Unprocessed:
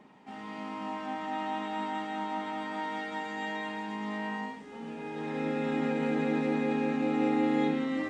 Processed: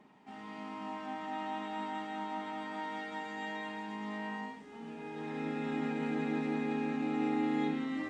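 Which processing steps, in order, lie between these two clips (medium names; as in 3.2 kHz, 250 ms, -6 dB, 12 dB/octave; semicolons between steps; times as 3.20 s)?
band-stop 520 Hz, Q 12; trim -4.5 dB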